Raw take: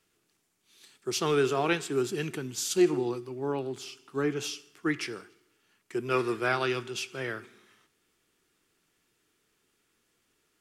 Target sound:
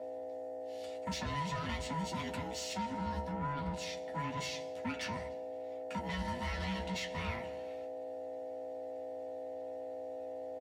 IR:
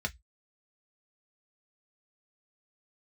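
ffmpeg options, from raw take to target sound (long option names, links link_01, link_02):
-filter_complex "[0:a]acrossover=split=2600|6600[link_01][link_02][link_03];[link_01]acompressor=threshold=-34dB:ratio=4[link_04];[link_02]acompressor=threshold=-41dB:ratio=4[link_05];[link_03]acompressor=threshold=-52dB:ratio=4[link_06];[link_04][link_05][link_06]amix=inputs=3:normalize=0,aeval=exprs='val(0)+0.00631*(sin(2*PI*60*n/s)+sin(2*PI*2*60*n/s)/2+sin(2*PI*3*60*n/s)/3+sin(2*PI*4*60*n/s)/4+sin(2*PI*5*60*n/s)/5)':channel_layout=same,aeval=exprs='val(0)*sin(2*PI*570*n/s)':channel_layout=same,acompressor=threshold=-36dB:ratio=6,asoftclip=type=tanh:threshold=-37dB,asplit=2[link_07][link_08];[link_08]adelay=12,volume=-6dB[link_09];[link_07][link_09]amix=inputs=2:normalize=0[link_10];[1:a]atrim=start_sample=2205[link_11];[link_10][link_11]afir=irnorm=-1:irlink=0,volume=1dB"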